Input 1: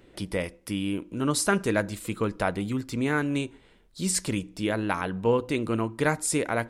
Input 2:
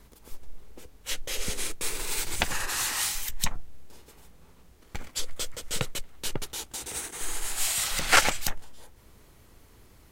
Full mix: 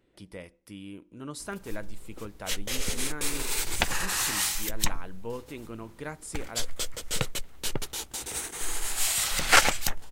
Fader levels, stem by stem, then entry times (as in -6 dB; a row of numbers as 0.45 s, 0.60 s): -13.5 dB, +1.0 dB; 0.00 s, 1.40 s